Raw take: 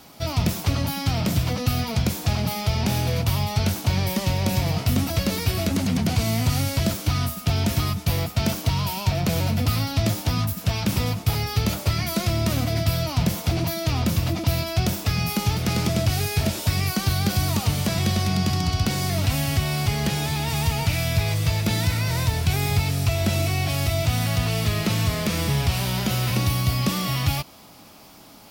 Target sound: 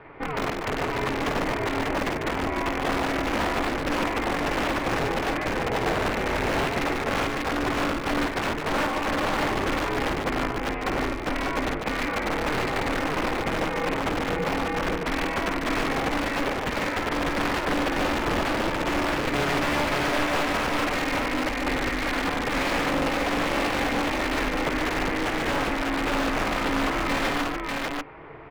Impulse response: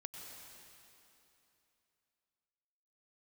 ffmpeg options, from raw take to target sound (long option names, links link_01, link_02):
-filter_complex "[0:a]asplit=2[link_01][link_02];[link_02]acompressor=threshold=-30dB:ratio=16,volume=2dB[link_03];[link_01][link_03]amix=inputs=2:normalize=0,highpass=130,equalizer=frequency=140:width_type=q:width=4:gain=8,equalizer=frequency=300:width_type=q:width=4:gain=4,equalizer=frequency=620:width_type=q:width=4:gain=-4,equalizer=frequency=2000:width_type=q:width=4:gain=9,lowpass=frequency=2200:width=0.5412,lowpass=frequency=2200:width=1.3066,aeval=exprs='(mod(5.96*val(0)+1,2)-1)/5.96':channel_layout=same,aeval=exprs='val(0)*sin(2*PI*150*n/s)':channel_layout=same,asplit=2[link_04][link_05];[link_05]aecho=0:1:52|146|593:0.335|0.473|0.708[link_06];[link_04][link_06]amix=inputs=2:normalize=0,asplit=2[link_07][link_08];[link_08]highpass=frequency=720:poles=1,volume=6dB,asoftclip=type=tanh:threshold=-15dB[link_09];[link_07][link_09]amix=inputs=2:normalize=0,lowpass=frequency=1500:poles=1,volume=-6dB"